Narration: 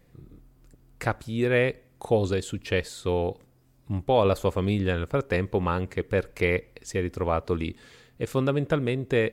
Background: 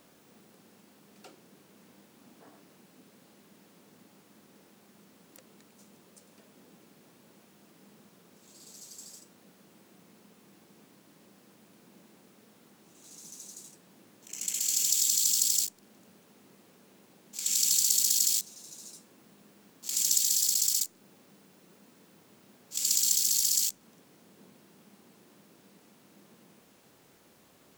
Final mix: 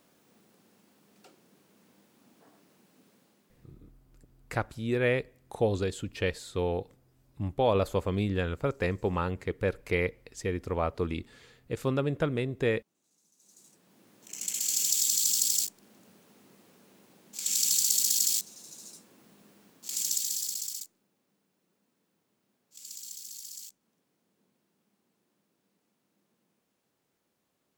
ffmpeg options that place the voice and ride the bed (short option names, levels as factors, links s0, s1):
-filter_complex "[0:a]adelay=3500,volume=0.631[s0];[1:a]volume=6.68,afade=t=out:st=3.1:d=0.71:silence=0.141254,afade=t=in:st=13.37:d=0.92:silence=0.0841395,afade=t=out:st=19.49:d=1.59:silence=0.141254[s1];[s0][s1]amix=inputs=2:normalize=0"